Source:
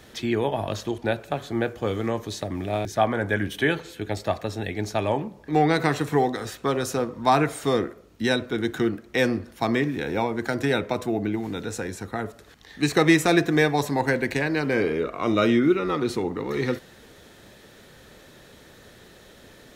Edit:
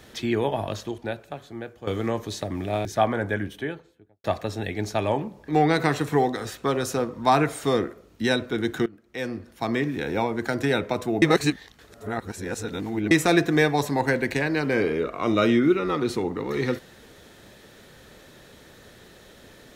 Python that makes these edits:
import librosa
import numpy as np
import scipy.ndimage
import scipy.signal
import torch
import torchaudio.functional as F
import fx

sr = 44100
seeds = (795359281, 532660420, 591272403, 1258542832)

y = fx.studio_fade_out(x, sr, start_s=2.99, length_s=1.25)
y = fx.edit(y, sr, fx.fade_out_to(start_s=0.55, length_s=1.32, curve='qua', floor_db=-11.5),
    fx.fade_in_from(start_s=8.86, length_s=1.17, floor_db=-22.5),
    fx.reverse_span(start_s=11.22, length_s=1.89), tone=tone)